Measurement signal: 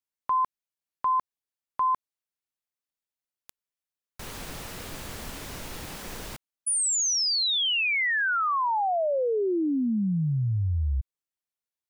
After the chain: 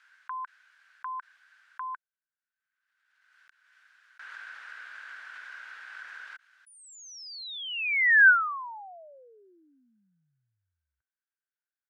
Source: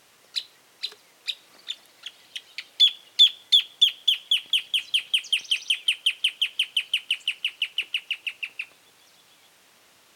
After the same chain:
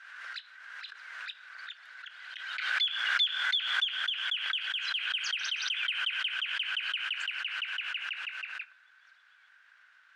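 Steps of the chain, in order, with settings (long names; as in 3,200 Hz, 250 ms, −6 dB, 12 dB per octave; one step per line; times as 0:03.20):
four-pole ladder band-pass 1,600 Hz, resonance 85%
background raised ahead of every attack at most 37 dB per second
level +4 dB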